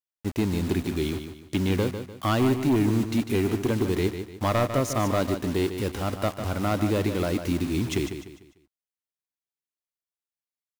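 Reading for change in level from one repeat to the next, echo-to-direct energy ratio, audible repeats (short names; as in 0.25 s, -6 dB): -9.0 dB, -8.5 dB, 3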